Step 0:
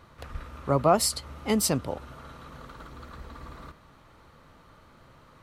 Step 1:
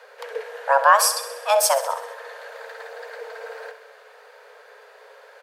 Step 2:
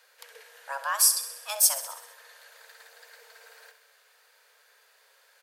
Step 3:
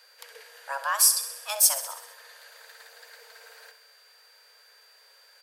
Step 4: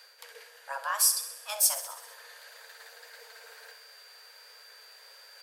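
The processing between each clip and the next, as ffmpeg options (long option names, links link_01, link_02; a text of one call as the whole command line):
ffmpeg -i in.wav -filter_complex "[0:a]afreqshift=410,asplit=2[link_01][link_02];[link_02]aecho=0:1:65|130|195|260|325|390|455:0.251|0.151|0.0904|0.0543|0.0326|0.0195|0.0117[link_03];[link_01][link_03]amix=inputs=2:normalize=0,volume=6dB" out.wav
ffmpeg -i in.wav -af "aderivative" out.wav
ffmpeg -i in.wav -filter_complex "[0:a]asplit=2[link_01][link_02];[link_02]asoftclip=type=tanh:threshold=-19.5dB,volume=-11.5dB[link_03];[link_01][link_03]amix=inputs=2:normalize=0,aeval=exprs='val(0)+0.00141*sin(2*PI*4700*n/s)':channel_layout=same" out.wav
ffmpeg -i in.wav -af "areverse,acompressor=mode=upward:threshold=-39dB:ratio=2.5,areverse,flanger=delay=7:depth=6.1:regen=-54:speed=1.5:shape=sinusoidal" out.wav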